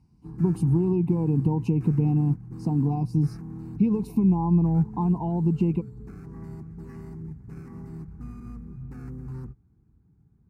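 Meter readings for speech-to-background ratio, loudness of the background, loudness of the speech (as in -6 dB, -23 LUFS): 15.5 dB, -40.0 LUFS, -24.5 LUFS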